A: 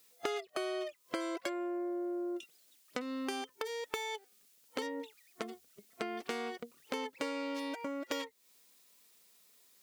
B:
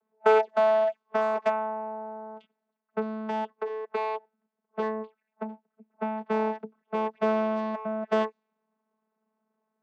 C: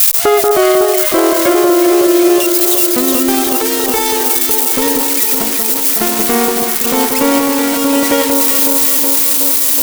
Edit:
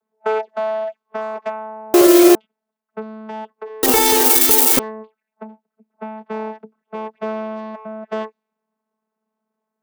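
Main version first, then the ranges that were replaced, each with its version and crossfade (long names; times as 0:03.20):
B
0:01.94–0:02.35: punch in from C
0:03.83–0:04.79: punch in from C
not used: A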